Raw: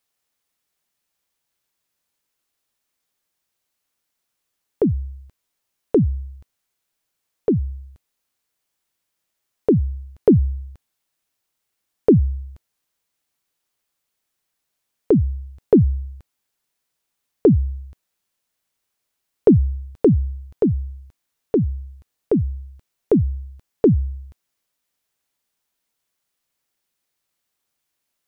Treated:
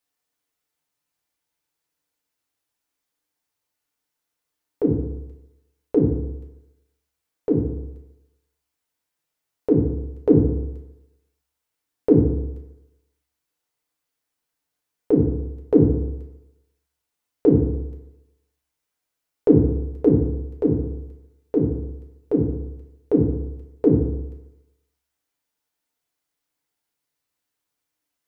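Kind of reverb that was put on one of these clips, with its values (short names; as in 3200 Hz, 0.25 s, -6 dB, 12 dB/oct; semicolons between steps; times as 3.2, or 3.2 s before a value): FDN reverb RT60 0.94 s, low-frequency decay 0.85×, high-frequency decay 0.4×, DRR -1.5 dB; gain -6.5 dB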